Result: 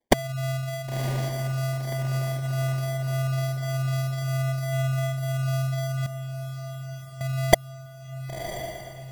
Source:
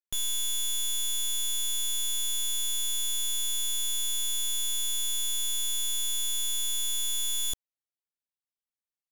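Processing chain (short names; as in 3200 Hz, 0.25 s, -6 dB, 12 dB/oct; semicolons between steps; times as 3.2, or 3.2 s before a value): sine-wave speech; 6.06–7.21 band-pass 440 Hz, Q 3.7; sample-and-hold 33×; diffused feedback echo 1.035 s, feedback 56%, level -9.5 dB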